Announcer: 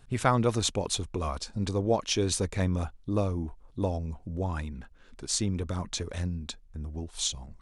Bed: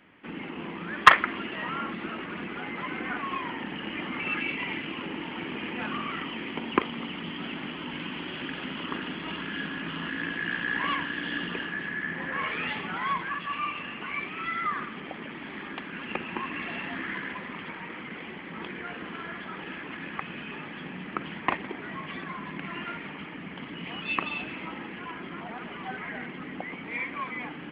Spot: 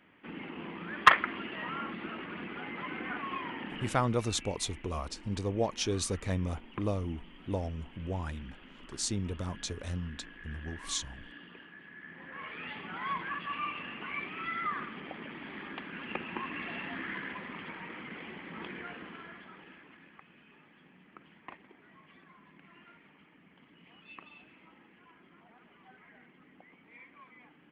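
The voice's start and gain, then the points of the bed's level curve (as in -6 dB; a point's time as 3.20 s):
3.70 s, -4.5 dB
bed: 3.83 s -5 dB
4.16 s -18.5 dB
11.83 s -18.5 dB
13.27 s -4.5 dB
18.78 s -4.5 dB
20.23 s -21 dB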